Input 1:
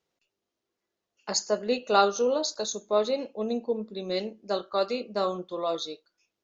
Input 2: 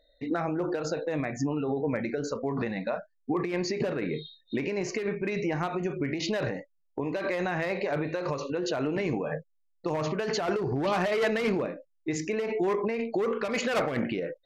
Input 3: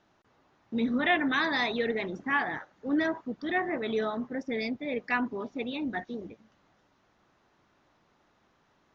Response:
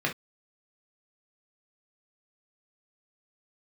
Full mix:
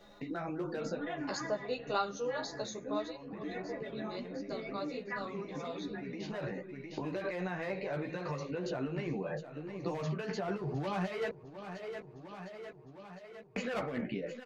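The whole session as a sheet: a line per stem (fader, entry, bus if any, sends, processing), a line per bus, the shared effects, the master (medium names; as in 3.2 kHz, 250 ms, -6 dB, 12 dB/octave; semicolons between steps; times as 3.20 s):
2.97 s -1 dB -> 3.18 s -11.5 dB, 0.00 s, no send, no echo send, bass shelf 500 Hz -9 dB
-11.5 dB, 0.00 s, muted 11.30–13.56 s, no send, echo send -16.5 dB, peaking EQ 150 Hz +7 dB 0.5 oct; level rider gain up to 6 dB; auto duck -16 dB, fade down 0.30 s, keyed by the first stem
0.0 dB, 0.00 s, no send, echo send -23.5 dB, low-pass 1.2 kHz 6 dB/octave; inharmonic resonator 61 Hz, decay 0.38 s, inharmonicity 0.03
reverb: none
echo: feedback delay 707 ms, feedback 37%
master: treble shelf 4.4 kHz -5 dB; chorus voices 6, 0.87 Hz, delay 13 ms, depth 2.9 ms; three bands compressed up and down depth 70%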